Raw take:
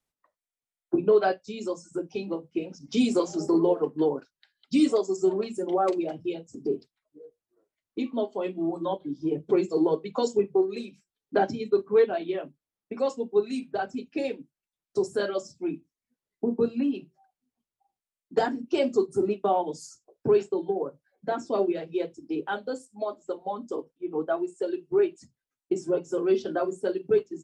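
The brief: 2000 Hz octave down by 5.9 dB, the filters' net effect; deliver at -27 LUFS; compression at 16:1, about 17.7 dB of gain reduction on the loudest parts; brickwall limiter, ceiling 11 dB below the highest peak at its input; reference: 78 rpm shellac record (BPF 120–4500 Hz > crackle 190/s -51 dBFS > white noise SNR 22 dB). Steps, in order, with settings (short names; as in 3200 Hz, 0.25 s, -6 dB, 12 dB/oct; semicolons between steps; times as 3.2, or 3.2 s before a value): bell 2000 Hz -8.5 dB; compressor 16:1, threshold -35 dBFS; limiter -35.5 dBFS; BPF 120–4500 Hz; crackle 190/s -51 dBFS; white noise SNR 22 dB; gain +18 dB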